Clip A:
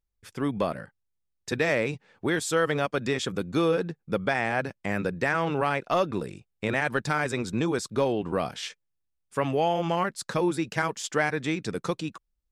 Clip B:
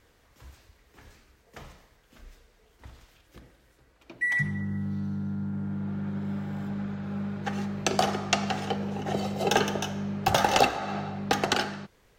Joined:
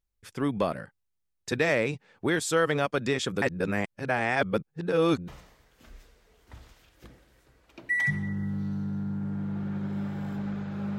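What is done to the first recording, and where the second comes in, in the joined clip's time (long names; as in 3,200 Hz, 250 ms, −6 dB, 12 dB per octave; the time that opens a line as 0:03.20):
clip A
0:03.42–0:05.28: reverse
0:05.28: continue with clip B from 0:01.60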